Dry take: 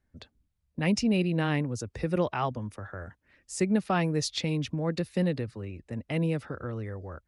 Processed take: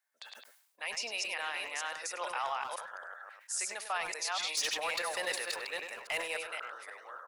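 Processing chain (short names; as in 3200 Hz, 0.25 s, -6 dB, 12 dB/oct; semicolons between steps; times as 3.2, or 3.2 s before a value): reverse delay 0.276 s, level -2 dB; HPF 780 Hz 24 dB/oct; high shelf 6400 Hz +10 dB; limiter -23 dBFS, peak gain reduction 8 dB; 4.57–6.37 sample leveller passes 2; speakerphone echo 0.1 s, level -8 dB; sustainer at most 71 dB/s; gain -2 dB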